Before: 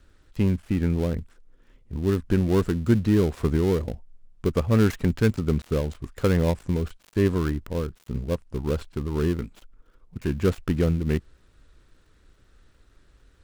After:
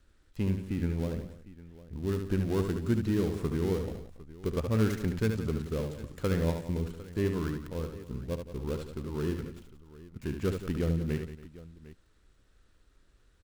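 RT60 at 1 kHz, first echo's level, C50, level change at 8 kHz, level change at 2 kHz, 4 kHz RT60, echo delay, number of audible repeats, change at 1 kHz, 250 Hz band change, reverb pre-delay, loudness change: no reverb audible, −6.5 dB, no reverb audible, −5.0 dB, −7.0 dB, no reverb audible, 73 ms, 4, −7.0 dB, −7.5 dB, no reverb audible, −7.0 dB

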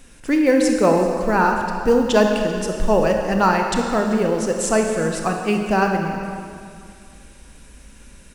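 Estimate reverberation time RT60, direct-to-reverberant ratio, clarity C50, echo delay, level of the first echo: 2.3 s, 2.5 dB, 3.5 dB, 386 ms, −17.5 dB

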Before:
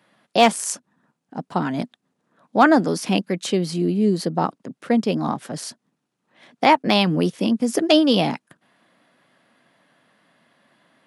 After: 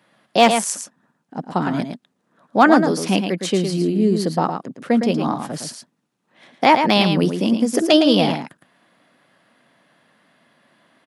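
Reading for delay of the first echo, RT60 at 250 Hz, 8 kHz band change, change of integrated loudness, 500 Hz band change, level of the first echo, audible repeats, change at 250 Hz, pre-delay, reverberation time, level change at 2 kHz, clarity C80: 111 ms, no reverb audible, +2.5 dB, +2.0 dB, +2.5 dB, −7.0 dB, 1, +2.0 dB, no reverb audible, no reverb audible, +2.0 dB, no reverb audible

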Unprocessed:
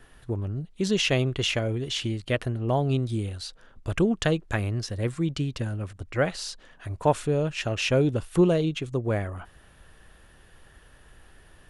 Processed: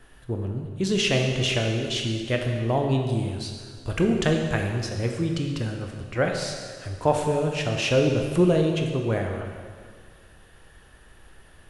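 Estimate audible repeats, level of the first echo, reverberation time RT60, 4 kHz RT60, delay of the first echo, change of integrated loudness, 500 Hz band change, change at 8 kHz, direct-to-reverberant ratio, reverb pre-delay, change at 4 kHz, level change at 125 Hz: no echo audible, no echo audible, 1.8 s, 1.8 s, no echo audible, +1.5 dB, +2.5 dB, +2.0 dB, 2.0 dB, 8 ms, +2.0 dB, +1.5 dB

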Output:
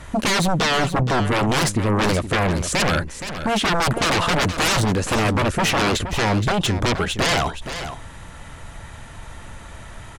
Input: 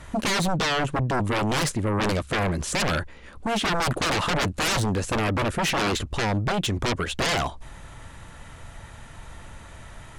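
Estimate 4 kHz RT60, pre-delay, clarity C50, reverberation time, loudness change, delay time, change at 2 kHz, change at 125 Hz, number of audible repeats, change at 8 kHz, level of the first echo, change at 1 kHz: no reverb audible, no reverb audible, no reverb audible, no reverb audible, +4.5 dB, 471 ms, +5.0 dB, +5.0 dB, 1, +5.0 dB, −10.5 dB, +5.0 dB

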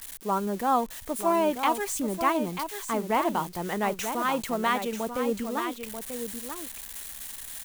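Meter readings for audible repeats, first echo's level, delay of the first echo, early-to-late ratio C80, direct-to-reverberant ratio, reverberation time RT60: 1, −8.0 dB, 938 ms, no reverb audible, no reverb audible, no reverb audible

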